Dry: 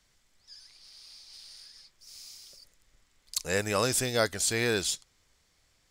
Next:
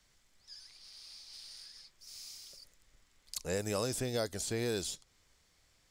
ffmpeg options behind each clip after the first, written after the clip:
ffmpeg -i in.wav -filter_complex "[0:a]acrossover=split=880|3800[link_01][link_02][link_03];[link_01]acompressor=threshold=-31dB:ratio=4[link_04];[link_02]acompressor=threshold=-48dB:ratio=4[link_05];[link_03]acompressor=threshold=-39dB:ratio=4[link_06];[link_04][link_05][link_06]amix=inputs=3:normalize=0,volume=-1dB" out.wav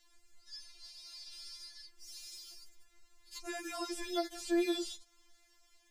ffmpeg -i in.wav -filter_complex "[0:a]acrossover=split=4000[link_01][link_02];[link_02]acompressor=threshold=-47dB:ratio=4:attack=1:release=60[link_03];[link_01][link_03]amix=inputs=2:normalize=0,afftfilt=real='re*4*eq(mod(b,16),0)':imag='im*4*eq(mod(b,16),0)':win_size=2048:overlap=0.75,volume=3.5dB" out.wav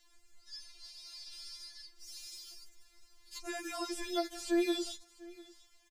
ffmpeg -i in.wav -af "aecho=1:1:697:0.0891,volume=1dB" out.wav

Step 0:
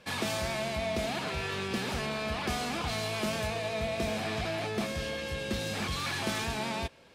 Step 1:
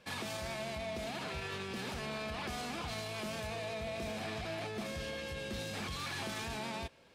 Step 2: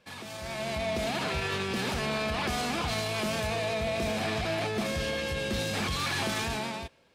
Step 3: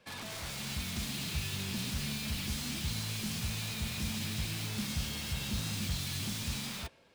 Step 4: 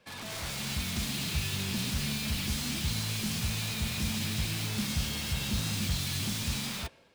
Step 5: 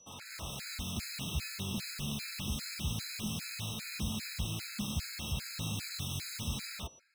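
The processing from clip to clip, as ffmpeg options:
ffmpeg -i in.wav -af "alimiter=level_in=2dB:limit=-24dB:level=0:latency=1:release=25,volume=-2dB,volume=-5dB" out.wav
ffmpeg -i in.wav -af "dynaudnorm=framelen=130:gausssize=9:maxgain=12dB,volume=-2.5dB" out.wav
ffmpeg -i in.wav -filter_complex "[0:a]acrossover=split=240|2600[link_01][link_02][link_03];[link_02]aeval=exprs='(mod(94.4*val(0)+1,2)-1)/94.4':channel_layout=same[link_04];[link_03]alimiter=level_in=8.5dB:limit=-24dB:level=0:latency=1,volume=-8.5dB[link_05];[link_01][link_04][link_05]amix=inputs=3:normalize=0" out.wav
ffmpeg -i in.wav -af "dynaudnorm=framelen=100:gausssize=5:maxgain=4dB" out.wav
ffmpeg -i in.wav -af "aeval=exprs='val(0)+0.002*sin(2*PI*5900*n/s)':channel_layout=same,afftfilt=real='re*gt(sin(2*PI*2.5*pts/sr)*(1-2*mod(floor(b*sr/1024/1300),2)),0)':imag='im*gt(sin(2*PI*2.5*pts/sr)*(1-2*mod(floor(b*sr/1024/1300),2)),0)':win_size=1024:overlap=0.75,volume=-3dB" out.wav

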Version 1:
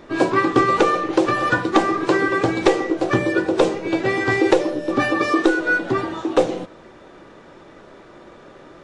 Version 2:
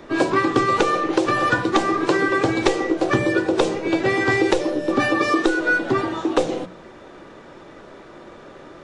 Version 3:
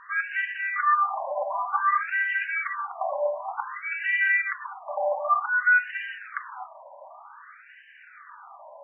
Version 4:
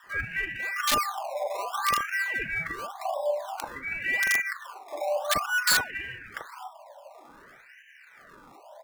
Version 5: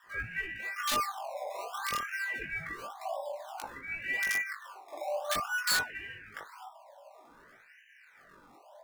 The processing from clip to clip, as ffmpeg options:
ffmpeg -i in.wav -filter_complex "[0:a]bandreject=frequency=60:width_type=h:width=6,bandreject=frequency=120:width_type=h:width=6,bandreject=frequency=180:width_type=h:width=6,acrossover=split=160|3000[link_01][link_02][link_03];[link_02]acompressor=threshold=-17dB:ratio=6[link_04];[link_01][link_04][link_03]amix=inputs=3:normalize=0,volume=2dB" out.wav
ffmpeg -i in.wav -af "alimiter=level_in=11.5dB:limit=-1dB:release=50:level=0:latency=1,afftfilt=real='re*between(b*sr/1024,760*pow(2200/760,0.5+0.5*sin(2*PI*0.54*pts/sr))/1.41,760*pow(2200/760,0.5+0.5*sin(2*PI*0.54*pts/sr))*1.41)':imag='im*between(b*sr/1024,760*pow(2200/760,0.5+0.5*sin(2*PI*0.54*pts/sr))/1.41,760*pow(2200/760,0.5+0.5*sin(2*PI*0.54*pts/sr))*1.41)':win_size=1024:overlap=0.75,volume=-8.5dB" out.wav
ffmpeg -i in.wav -filter_complex "[0:a]acrossover=split=980|1300[link_01][link_02][link_03];[link_02]acrusher=samples=20:mix=1:aa=0.000001:lfo=1:lforange=20:lforate=0.86[link_04];[link_01][link_04][link_03]amix=inputs=3:normalize=0,aeval=exprs='(mod(5.62*val(0)+1,2)-1)/5.62':channel_layout=same,acrossover=split=1100[link_05][link_06];[link_05]adelay=40[link_07];[link_07][link_06]amix=inputs=2:normalize=0" out.wav
ffmpeg -i in.wav -af "flanger=delay=17.5:depth=4.2:speed=0.28,volume=-3dB" out.wav

